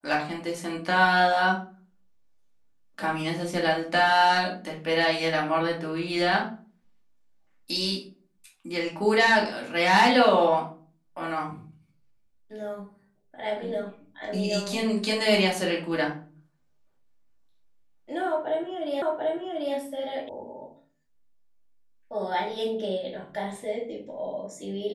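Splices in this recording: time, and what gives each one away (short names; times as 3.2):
19.02 repeat of the last 0.74 s
20.29 sound cut off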